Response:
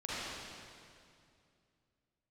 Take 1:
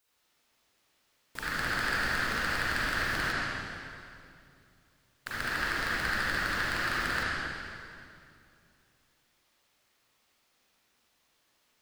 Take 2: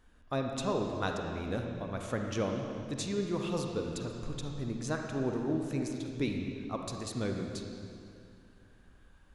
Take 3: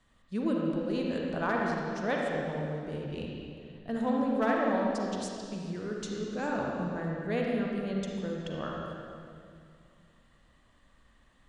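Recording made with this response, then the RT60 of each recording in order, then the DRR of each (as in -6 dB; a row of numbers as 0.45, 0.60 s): 1; 2.4, 2.4, 2.4 s; -10.0, 2.0, -2.0 dB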